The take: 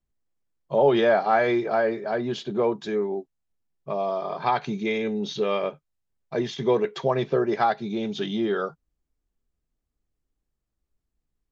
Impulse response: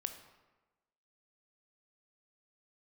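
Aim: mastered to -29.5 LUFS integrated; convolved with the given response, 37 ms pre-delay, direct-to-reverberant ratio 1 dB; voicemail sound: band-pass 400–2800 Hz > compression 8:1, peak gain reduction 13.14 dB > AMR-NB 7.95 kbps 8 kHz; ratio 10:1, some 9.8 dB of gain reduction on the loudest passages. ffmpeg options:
-filter_complex "[0:a]acompressor=threshold=0.0562:ratio=10,asplit=2[s0][s1];[1:a]atrim=start_sample=2205,adelay=37[s2];[s1][s2]afir=irnorm=-1:irlink=0,volume=1[s3];[s0][s3]amix=inputs=2:normalize=0,highpass=400,lowpass=2800,acompressor=threshold=0.0178:ratio=8,volume=3.35" -ar 8000 -c:a libopencore_amrnb -b:a 7950

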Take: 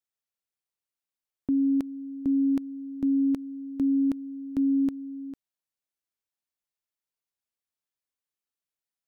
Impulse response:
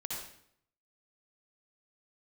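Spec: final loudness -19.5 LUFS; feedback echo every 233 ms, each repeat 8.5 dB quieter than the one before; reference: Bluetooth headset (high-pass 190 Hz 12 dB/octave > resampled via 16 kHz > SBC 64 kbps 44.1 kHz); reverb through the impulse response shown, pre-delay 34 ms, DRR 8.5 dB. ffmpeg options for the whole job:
-filter_complex "[0:a]aecho=1:1:233|466|699|932:0.376|0.143|0.0543|0.0206,asplit=2[s0][s1];[1:a]atrim=start_sample=2205,adelay=34[s2];[s1][s2]afir=irnorm=-1:irlink=0,volume=0.335[s3];[s0][s3]amix=inputs=2:normalize=0,highpass=190,aresample=16000,aresample=44100,volume=2.11" -ar 44100 -c:a sbc -b:a 64k

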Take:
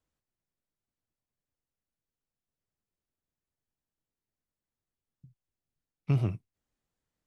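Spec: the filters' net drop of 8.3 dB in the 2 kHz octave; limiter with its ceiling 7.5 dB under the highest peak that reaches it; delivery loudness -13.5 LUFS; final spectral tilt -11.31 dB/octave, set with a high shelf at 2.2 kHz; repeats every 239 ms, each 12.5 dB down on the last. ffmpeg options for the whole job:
-af "equalizer=f=2000:t=o:g=-6.5,highshelf=f=2200:g=-7,alimiter=limit=0.0668:level=0:latency=1,aecho=1:1:239|478|717:0.237|0.0569|0.0137,volume=14.1"

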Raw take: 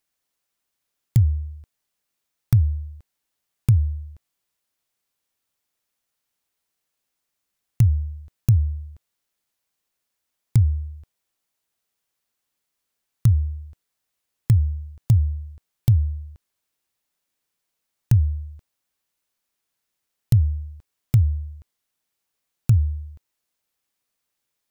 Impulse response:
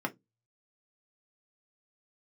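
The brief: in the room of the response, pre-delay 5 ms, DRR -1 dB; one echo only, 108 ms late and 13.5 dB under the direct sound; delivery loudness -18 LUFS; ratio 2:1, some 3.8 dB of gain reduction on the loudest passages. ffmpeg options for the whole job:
-filter_complex "[0:a]acompressor=threshold=0.126:ratio=2,aecho=1:1:108:0.211,asplit=2[s0][s1];[1:a]atrim=start_sample=2205,adelay=5[s2];[s1][s2]afir=irnorm=-1:irlink=0,volume=0.596[s3];[s0][s3]amix=inputs=2:normalize=0,volume=1.68"

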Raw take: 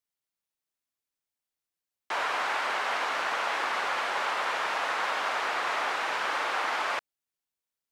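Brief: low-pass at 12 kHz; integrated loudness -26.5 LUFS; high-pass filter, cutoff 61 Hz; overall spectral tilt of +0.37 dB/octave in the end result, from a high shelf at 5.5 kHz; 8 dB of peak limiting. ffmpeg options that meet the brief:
-af "highpass=61,lowpass=12000,highshelf=f=5500:g=4.5,volume=2,alimiter=limit=0.119:level=0:latency=1"

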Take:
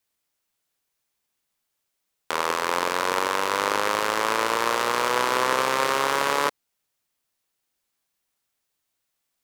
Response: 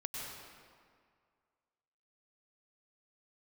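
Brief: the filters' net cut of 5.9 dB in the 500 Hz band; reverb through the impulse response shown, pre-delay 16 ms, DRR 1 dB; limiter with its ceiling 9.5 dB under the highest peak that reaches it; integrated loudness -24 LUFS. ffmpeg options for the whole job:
-filter_complex "[0:a]equalizer=f=500:t=o:g=-7,alimiter=limit=0.188:level=0:latency=1,asplit=2[s0][s1];[1:a]atrim=start_sample=2205,adelay=16[s2];[s1][s2]afir=irnorm=-1:irlink=0,volume=0.794[s3];[s0][s3]amix=inputs=2:normalize=0,volume=1.78"

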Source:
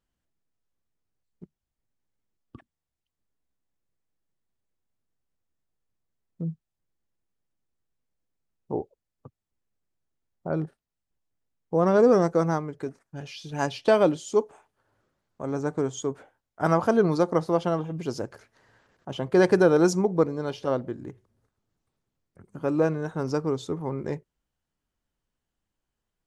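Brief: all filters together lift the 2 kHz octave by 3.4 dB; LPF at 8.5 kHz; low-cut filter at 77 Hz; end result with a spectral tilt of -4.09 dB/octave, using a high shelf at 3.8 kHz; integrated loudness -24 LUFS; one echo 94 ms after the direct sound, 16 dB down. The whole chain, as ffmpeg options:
-af "highpass=77,lowpass=8500,equalizer=f=2000:t=o:g=6.5,highshelf=f=3800:g=-7,aecho=1:1:94:0.158,volume=1.12"

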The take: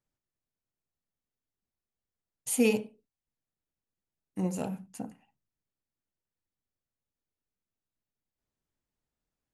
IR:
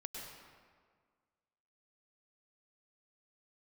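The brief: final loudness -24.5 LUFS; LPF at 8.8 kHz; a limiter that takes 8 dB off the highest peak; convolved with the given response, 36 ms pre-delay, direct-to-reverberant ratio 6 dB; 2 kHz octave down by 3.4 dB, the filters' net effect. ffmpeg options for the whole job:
-filter_complex "[0:a]lowpass=8800,equalizer=f=2000:t=o:g=-5,alimiter=limit=0.0841:level=0:latency=1,asplit=2[s0][s1];[1:a]atrim=start_sample=2205,adelay=36[s2];[s1][s2]afir=irnorm=-1:irlink=0,volume=0.631[s3];[s0][s3]amix=inputs=2:normalize=0,volume=3.55"

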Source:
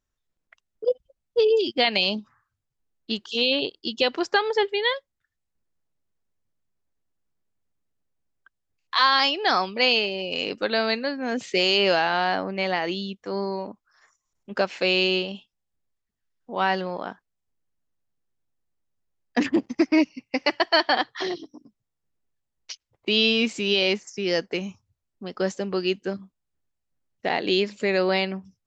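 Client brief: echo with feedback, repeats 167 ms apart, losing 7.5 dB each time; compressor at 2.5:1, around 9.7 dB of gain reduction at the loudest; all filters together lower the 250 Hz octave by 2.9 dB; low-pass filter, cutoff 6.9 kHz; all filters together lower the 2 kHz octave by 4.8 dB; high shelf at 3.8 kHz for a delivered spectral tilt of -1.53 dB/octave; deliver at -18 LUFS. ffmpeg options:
-af "lowpass=6900,equalizer=f=250:t=o:g=-4,equalizer=f=2000:t=o:g=-8.5,highshelf=f=3800:g=6,acompressor=threshold=0.0251:ratio=2.5,aecho=1:1:167|334|501|668|835:0.422|0.177|0.0744|0.0312|0.0131,volume=5.31"

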